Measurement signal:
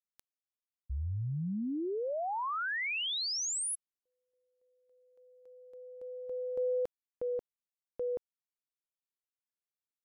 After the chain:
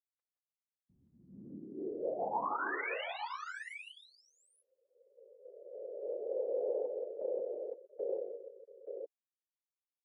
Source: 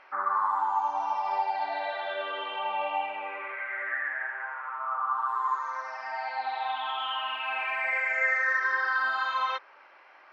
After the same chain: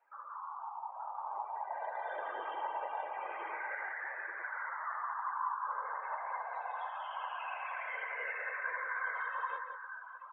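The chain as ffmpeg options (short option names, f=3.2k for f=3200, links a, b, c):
-filter_complex "[0:a]asoftclip=type=tanh:threshold=-20dB,acompressor=threshold=-36dB:ratio=8:attack=0.11:release=559:knee=6:detection=rms,highshelf=f=2.8k:g=-8,aecho=1:1:5.7:0.5,afftfilt=real='hypot(re,im)*cos(2*PI*random(0))':imag='hypot(re,im)*sin(2*PI*random(1))':win_size=512:overlap=0.75,aecho=1:1:169|188|311|470|682|877:0.398|0.335|0.224|0.133|0.119|0.501,dynaudnorm=f=180:g=17:m=7dB,afftdn=nr=17:nf=-49,highpass=f=150:p=1,acrossover=split=280 2600:gain=0.0794 1 0.0631[a][b][c];[a][b][c]amix=inputs=3:normalize=0,volume=1dB"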